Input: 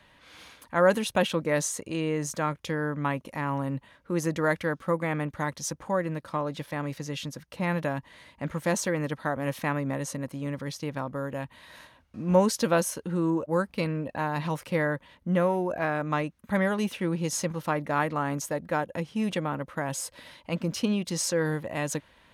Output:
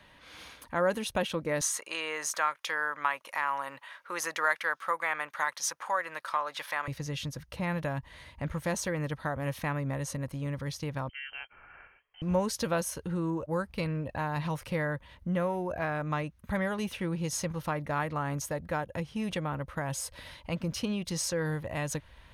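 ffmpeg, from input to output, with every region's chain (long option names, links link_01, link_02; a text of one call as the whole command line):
ffmpeg -i in.wav -filter_complex "[0:a]asettb=1/sr,asplit=3[link_01][link_02][link_03];[link_01]atrim=end=1.614[link_04];[link_02]atrim=start=1.61:end=6.88,asetpts=PTS-STARTPTS,afade=type=in:duration=0.004:curve=qsin,afade=type=out:start_time=5.266:duration=0.004:curve=qsin,highpass=920,acontrast=36,equalizer=frequency=1300:width_type=o:width=1.6:gain=5[link_05];[link_03]atrim=start=6.876[link_06];[link_04][link_05]acrossfade=duration=0.004:curve1=hsin:curve2=qsin[link_07];[link_07][link_06]acrossfade=duration=0.004:curve1=qsin:curve2=hsin,asettb=1/sr,asplit=3[link_08][link_09][link_10];[link_08]atrim=end=11.094[link_11];[link_09]atrim=start=11.09:end=12.22,asetpts=PTS-STARTPTS,afade=type=in:duration=0.004:curve=qsin,afade=type=out:start_time=1.126:duration=0.004:curve=qsin,highpass=frequency=1500:poles=1,lowpass=frequency=2800:width_type=q:width=0.5098,lowpass=frequency=2800:width_type=q:width=0.6013,lowpass=frequency=2800:width_type=q:width=0.9,lowpass=frequency=2800:width_type=q:width=2.563,afreqshift=-3300[link_12];[link_10]atrim=start=12.216[link_13];[link_11][link_12]acrossfade=duration=0.004:curve1=hsin:curve2=qsin[link_14];[link_14][link_13]acrossfade=duration=0.004:curve1=qsin:curve2=hsin,bandreject=frequency=7500:width=9.8,asubboost=boost=6:cutoff=91,acompressor=threshold=-37dB:ratio=1.5,volume=1dB" out.wav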